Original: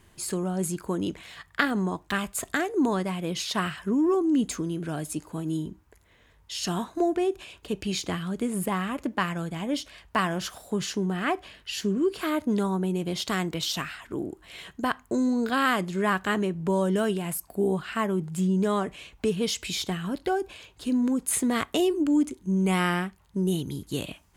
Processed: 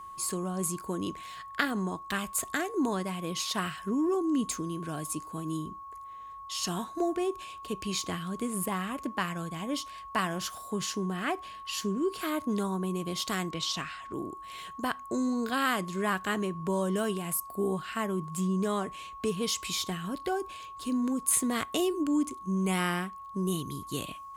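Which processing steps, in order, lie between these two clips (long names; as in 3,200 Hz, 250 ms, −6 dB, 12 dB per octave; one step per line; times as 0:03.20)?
0:13.51–0:14.14: low-pass filter 6,700 Hz 12 dB per octave
steady tone 1,100 Hz −37 dBFS
high-shelf EQ 4,900 Hz +7.5 dB
level −5 dB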